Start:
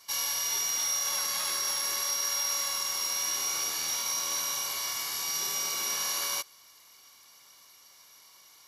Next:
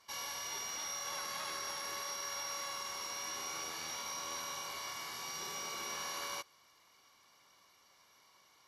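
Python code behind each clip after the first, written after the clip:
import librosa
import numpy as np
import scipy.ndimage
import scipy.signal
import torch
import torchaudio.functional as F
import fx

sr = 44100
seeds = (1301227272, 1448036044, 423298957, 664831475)

y = fx.lowpass(x, sr, hz=1800.0, slope=6)
y = F.gain(torch.from_numpy(y), -2.5).numpy()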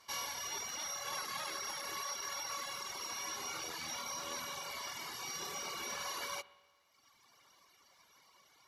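y = fx.rev_spring(x, sr, rt60_s=1.4, pass_ms=(49, 57), chirp_ms=40, drr_db=9.0)
y = fx.dereverb_blind(y, sr, rt60_s=1.4)
y = F.gain(torch.from_numpy(y), 3.0).numpy()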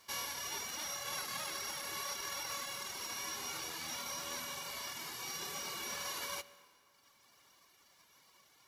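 y = fx.envelope_flatten(x, sr, power=0.6)
y = fx.rev_plate(y, sr, seeds[0], rt60_s=2.8, hf_ratio=0.6, predelay_ms=100, drr_db=20.0)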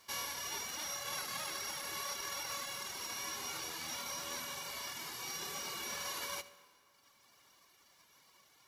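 y = x + 10.0 ** (-18.5 / 20.0) * np.pad(x, (int(76 * sr / 1000.0), 0))[:len(x)]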